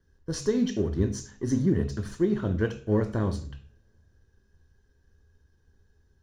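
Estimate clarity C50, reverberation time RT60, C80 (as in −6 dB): 13.0 dB, 0.45 s, 17.5 dB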